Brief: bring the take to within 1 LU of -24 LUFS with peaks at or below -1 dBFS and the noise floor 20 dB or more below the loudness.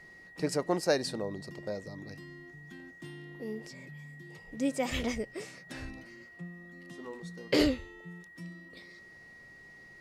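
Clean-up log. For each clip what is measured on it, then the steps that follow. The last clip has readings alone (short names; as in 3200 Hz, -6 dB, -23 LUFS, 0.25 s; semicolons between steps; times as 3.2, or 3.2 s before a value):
steady tone 1900 Hz; tone level -51 dBFS; loudness -35.0 LUFS; peak -15.5 dBFS; loudness target -24.0 LUFS
-> notch 1900 Hz, Q 30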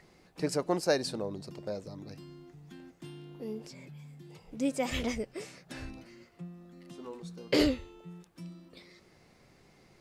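steady tone none; loudness -34.0 LUFS; peak -15.5 dBFS; loudness target -24.0 LUFS
-> gain +10 dB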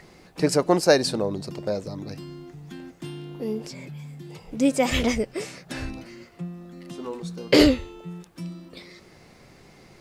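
loudness -24.0 LUFS; peak -5.5 dBFS; noise floor -53 dBFS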